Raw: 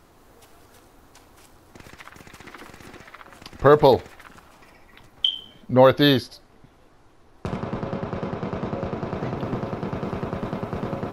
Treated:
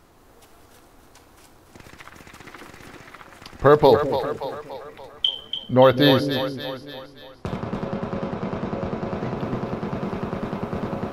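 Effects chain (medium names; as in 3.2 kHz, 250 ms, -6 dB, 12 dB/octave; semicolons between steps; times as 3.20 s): two-band feedback delay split 470 Hz, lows 204 ms, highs 288 ms, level -8 dB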